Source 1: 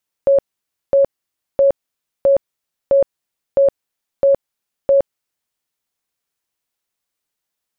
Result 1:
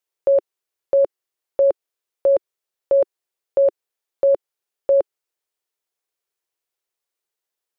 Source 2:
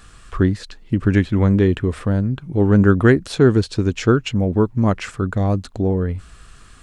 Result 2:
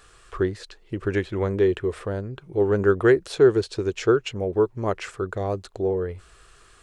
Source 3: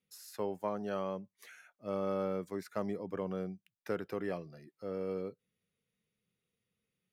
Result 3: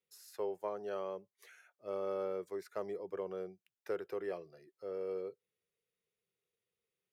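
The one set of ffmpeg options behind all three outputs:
ffmpeg -i in.wav -af "lowshelf=frequency=310:width_type=q:width=3:gain=-6.5,volume=-5dB" out.wav

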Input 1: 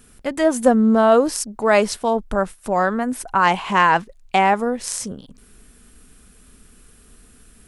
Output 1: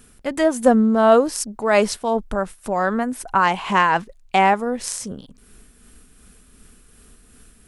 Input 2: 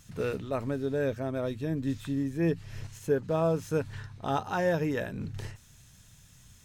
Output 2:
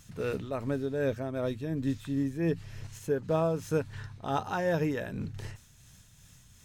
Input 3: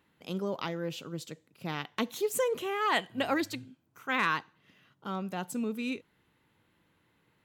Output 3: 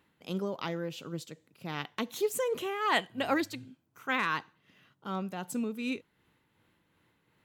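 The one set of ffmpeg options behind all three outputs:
ffmpeg -i in.wav -af "tremolo=f=2.7:d=0.37,volume=1dB" out.wav

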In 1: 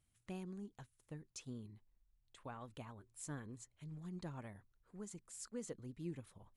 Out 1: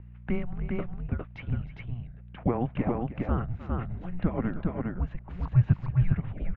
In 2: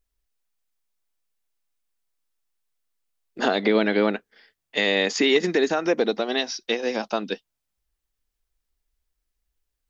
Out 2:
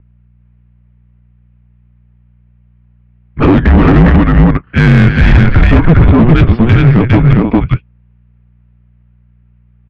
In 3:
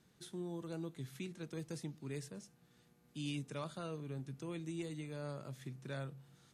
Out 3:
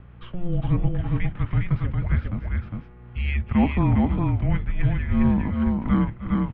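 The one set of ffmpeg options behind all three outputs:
ffmpeg -i in.wav -filter_complex "[0:a]aecho=1:1:309|407:0.188|0.708,asplit=2[link_01][link_02];[link_02]acontrast=71,volume=2.5dB[link_03];[link_01][link_03]amix=inputs=2:normalize=0,aeval=exprs='val(0)+0.01*(sin(2*PI*60*n/s)+sin(2*PI*2*60*n/s)/2+sin(2*PI*3*60*n/s)/3+sin(2*PI*4*60*n/s)/4+sin(2*PI*5*60*n/s)/5)':channel_layout=same,asoftclip=type=tanh:threshold=-7.5dB,equalizer=frequency=540:width=1.3:gain=12,highpass=frequency=250:width_type=q:width=0.5412,highpass=frequency=250:width_type=q:width=1.307,lowpass=frequency=2900:width_type=q:width=0.5176,lowpass=frequency=2900:width_type=q:width=0.7071,lowpass=frequency=2900:width_type=q:width=1.932,afreqshift=-360,acontrast=61,volume=-1dB" out.wav

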